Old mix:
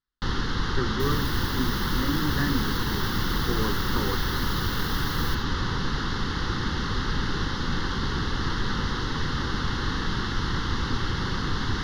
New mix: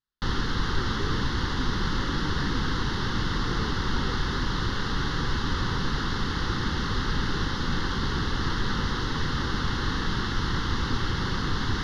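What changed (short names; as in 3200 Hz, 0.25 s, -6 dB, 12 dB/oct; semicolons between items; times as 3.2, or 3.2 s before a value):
speech -8.5 dB; second sound: muted; reverb: off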